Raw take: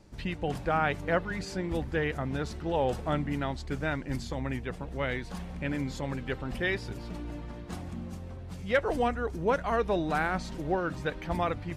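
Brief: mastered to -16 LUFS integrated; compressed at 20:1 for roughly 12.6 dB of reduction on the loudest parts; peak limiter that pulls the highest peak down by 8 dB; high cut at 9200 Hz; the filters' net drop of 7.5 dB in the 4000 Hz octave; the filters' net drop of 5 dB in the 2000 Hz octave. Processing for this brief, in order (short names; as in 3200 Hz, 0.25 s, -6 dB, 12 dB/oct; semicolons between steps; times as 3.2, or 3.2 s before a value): LPF 9200 Hz; bell 2000 Hz -5 dB; bell 4000 Hz -8 dB; compressor 20:1, threshold -34 dBFS; gain +27 dB; limiter -6.5 dBFS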